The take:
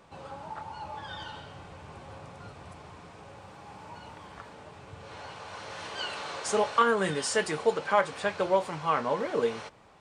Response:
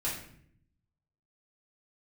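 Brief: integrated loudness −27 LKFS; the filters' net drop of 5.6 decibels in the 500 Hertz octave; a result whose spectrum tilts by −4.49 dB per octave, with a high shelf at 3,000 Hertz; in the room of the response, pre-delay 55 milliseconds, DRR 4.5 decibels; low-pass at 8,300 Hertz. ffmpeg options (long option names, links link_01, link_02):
-filter_complex "[0:a]lowpass=8300,equalizer=frequency=500:width_type=o:gain=-6.5,highshelf=frequency=3000:gain=-5.5,asplit=2[link_01][link_02];[1:a]atrim=start_sample=2205,adelay=55[link_03];[link_02][link_03]afir=irnorm=-1:irlink=0,volume=-9.5dB[link_04];[link_01][link_04]amix=inputs=2:normalize=0,volume=4.5dB"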